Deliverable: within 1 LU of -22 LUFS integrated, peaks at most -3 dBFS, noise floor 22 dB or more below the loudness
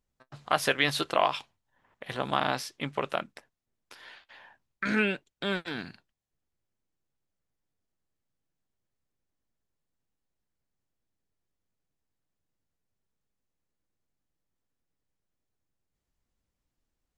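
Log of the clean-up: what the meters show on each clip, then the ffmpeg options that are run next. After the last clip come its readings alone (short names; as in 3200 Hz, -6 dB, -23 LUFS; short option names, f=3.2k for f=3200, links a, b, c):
loudness -29.5 LUFS; peak -7.5 dBFS; loudness target -22.0 LUFS
-> -af "volume=7.5dB,alimiter=limit=-3dB:level=0:latency=1"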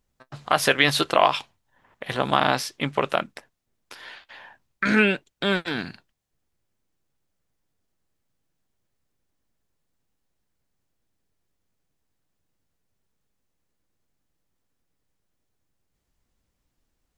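loudness -22.5 LUFS; peak -3.0 dBFS; noise floor -77 dBFS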